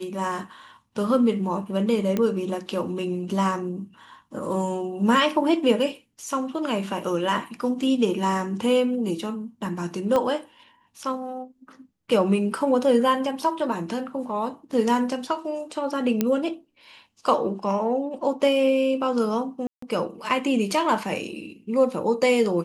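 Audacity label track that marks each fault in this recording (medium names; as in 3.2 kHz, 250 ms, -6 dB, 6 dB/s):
2.170000	2.170000	pop -12 dBFS
10.160000	10.160000	pop -12 dBFS
16.210000	16.210000	pop -8 dBFS
19.670000	19.820000	dropout 154 ms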